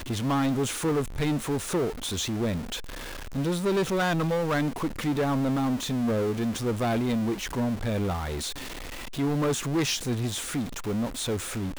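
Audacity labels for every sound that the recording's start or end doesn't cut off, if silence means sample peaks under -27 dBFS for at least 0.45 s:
3.350000	8.480000	sound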